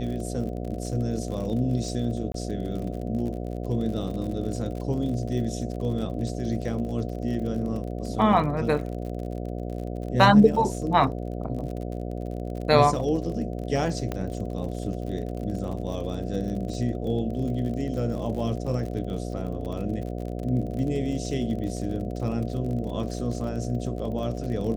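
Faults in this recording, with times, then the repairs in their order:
mains buzz 60 Hz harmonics 12 −32 dBFS
surface crackle 48 per second −34 dBFS
0:02.32–0:02.34: drop-out 22 ms
0:14.12: click −16 dBFS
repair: click removal
hum removal 60 Hz, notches 12
repair the gap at 0:02.32, 22 ms

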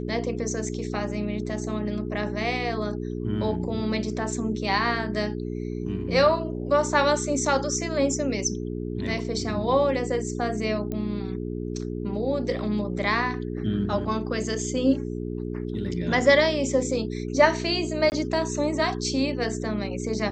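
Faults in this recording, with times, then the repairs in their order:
mains hum 60 Hz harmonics 7 −31 dBFS
0:10.92: click −19 dBFS
0:18.10–0:18.12: drop-out 19 ms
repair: click removal
hum removal 60 Hz, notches 7
repair the gap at 0:18.10, 19 ms

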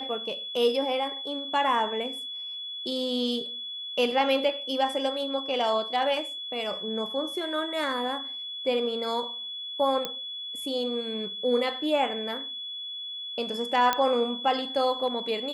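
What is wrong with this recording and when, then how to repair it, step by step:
whistle 3,400 Hz −34 dBFS
0:10.05: click −14 dBFS
0:13.93: click −9 dBFS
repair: click removal
notch filter 3,400 Hz, Q 30

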